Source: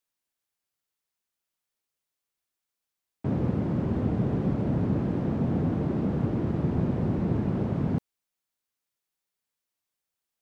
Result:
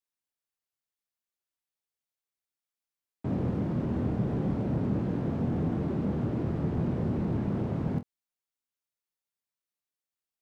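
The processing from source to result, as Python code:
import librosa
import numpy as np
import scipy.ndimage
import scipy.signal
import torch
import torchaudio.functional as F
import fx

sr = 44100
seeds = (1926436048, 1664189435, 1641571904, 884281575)

p1 = fx.leveller(x, sr, passes=1)
p2 = p1 + fx.room_early_taps(p1, sr, ms=(25, 46), db=(-8.5, -15.0), dry=0)
y = p2 * 10.0 ** (-6.5 / 20.0)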